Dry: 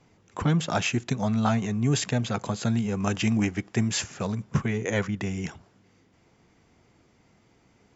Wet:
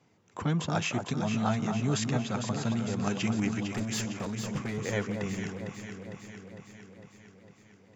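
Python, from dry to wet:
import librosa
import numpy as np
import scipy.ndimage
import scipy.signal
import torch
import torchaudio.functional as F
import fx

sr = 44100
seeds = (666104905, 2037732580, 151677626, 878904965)

p1 = scipy.signal.sosfilt(scipy.signal.butter(2, 99.0, 'highpass', fs=sr, output='sos'), x)
p2 = fx.overload_stage(p1, sr, gain_db=24.5, at=(3.66, 4.85))
p3 = p2 + fx.echo_alternate(p2, sr, ms=227, hz=1300.0, feedback_pct=79, wet_db=-5.0, dry=0)
y = p3 * librosa.db_to_amplitude(-5.0)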